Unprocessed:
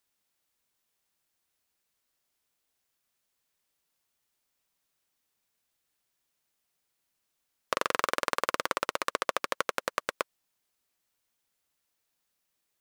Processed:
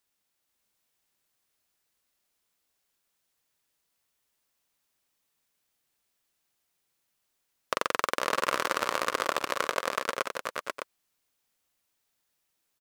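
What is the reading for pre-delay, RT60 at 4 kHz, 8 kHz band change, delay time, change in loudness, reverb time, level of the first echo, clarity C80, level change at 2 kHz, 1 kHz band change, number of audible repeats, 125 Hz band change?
no reverb, no reverb, +2.0 dB, 48 ms, +1.5 dB, no reverb, -18.5 dB, no reverb, +2.0 dB, +2.0 dB, 4, +2.0 dB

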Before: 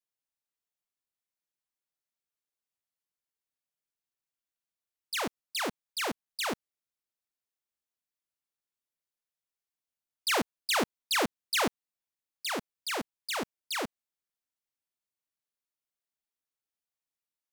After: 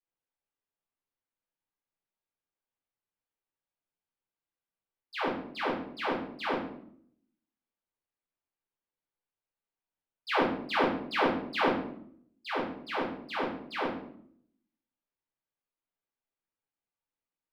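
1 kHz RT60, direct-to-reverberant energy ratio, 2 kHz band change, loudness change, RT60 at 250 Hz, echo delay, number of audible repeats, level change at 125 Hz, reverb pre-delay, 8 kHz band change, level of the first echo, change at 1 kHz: 0.60 s, -5.5 dB, 0.0 dB, 0.0 dB, 0.90 s, no echo, no echo, +4.0 dB, 6 ms, under -20 dB, no echo, +3.5 dB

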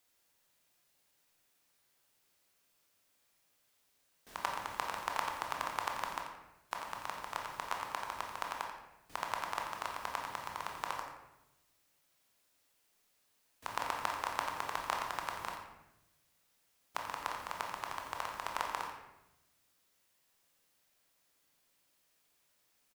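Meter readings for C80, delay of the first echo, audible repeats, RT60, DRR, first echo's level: 5.0 dB, 87 ms, 1, 0.90 s, 0.0 dB, -10.0 dB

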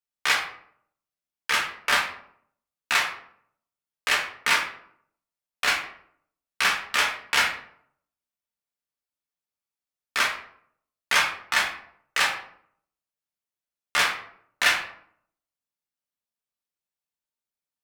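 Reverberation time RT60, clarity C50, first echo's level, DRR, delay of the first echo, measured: 0.65 s, 7.0 dB, no echo, -1.0 dB, no echo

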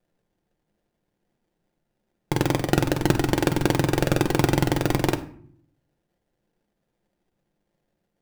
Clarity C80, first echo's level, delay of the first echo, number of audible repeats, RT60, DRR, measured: 17.0 dB, no echo, no echo, no echo, 0.55 s, 6.0 dB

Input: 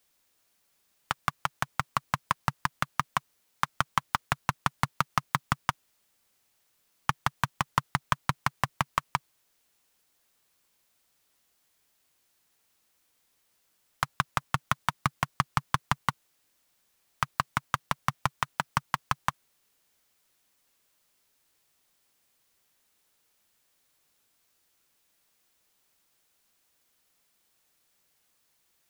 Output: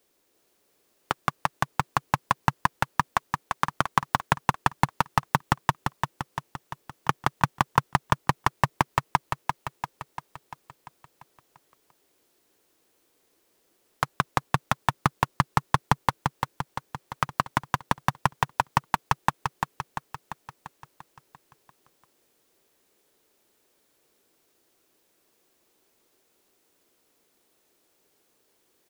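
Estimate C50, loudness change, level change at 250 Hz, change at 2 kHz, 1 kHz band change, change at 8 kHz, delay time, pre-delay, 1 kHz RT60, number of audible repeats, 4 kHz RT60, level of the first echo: no reverb, +3.5 dB, +6.5 dB, +3.0 dB, +5.0 dB, +1.5 dB, 344 ms, no reverb, no reverb, 7, no reverb, -5.0 dB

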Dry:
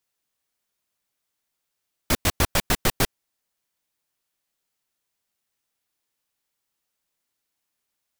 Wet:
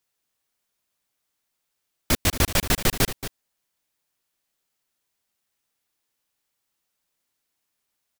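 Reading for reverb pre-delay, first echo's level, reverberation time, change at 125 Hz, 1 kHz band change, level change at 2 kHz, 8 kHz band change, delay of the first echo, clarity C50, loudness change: no reverb, -12.0 dB, no reverb, +1.5 dB, -1.5 dB, +0.5 dB, +1.5 dB, 227 ms, no reverb, +1.0 dB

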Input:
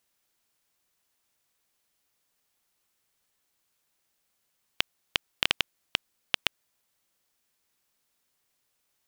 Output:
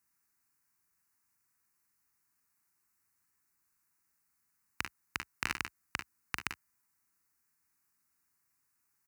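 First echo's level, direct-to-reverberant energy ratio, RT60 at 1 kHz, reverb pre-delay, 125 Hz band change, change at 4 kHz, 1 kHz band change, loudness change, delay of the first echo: -7.0 dB, no reverb, no reverb, no reverb, -1.5 dB, -16.0 dB, -2.5 dB, -9.0 dB, 42 ms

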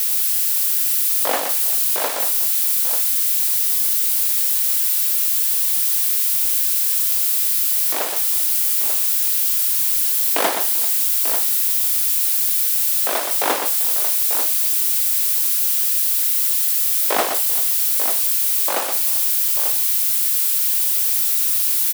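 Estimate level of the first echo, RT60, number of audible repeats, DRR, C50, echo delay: -7.0 dB, no reverb, 3, no reverb, no reverb, 121 ms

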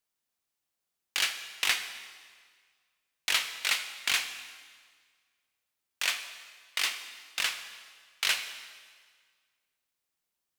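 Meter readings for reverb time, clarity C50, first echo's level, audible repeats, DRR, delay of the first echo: 1.7 s, 9.5 dB, no echo, no echo, 8.0 dB, no echo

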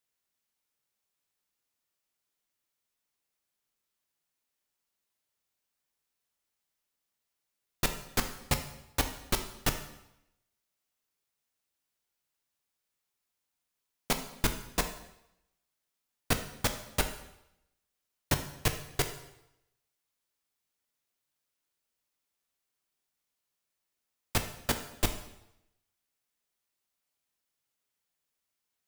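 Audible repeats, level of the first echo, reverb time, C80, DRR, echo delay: no echo, no echo, 0.85 s, 12.5 dB, 6.0 dB, no echo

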